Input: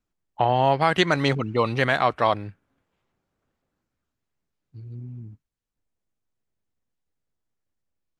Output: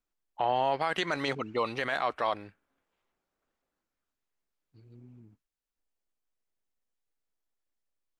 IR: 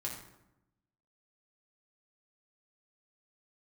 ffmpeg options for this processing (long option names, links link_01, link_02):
-af "equalizer=frequency=110:width=0.64:gain=-14,alimiter=limit=-14dB:level=0:latency=1:release=24,volume=-3.5dB"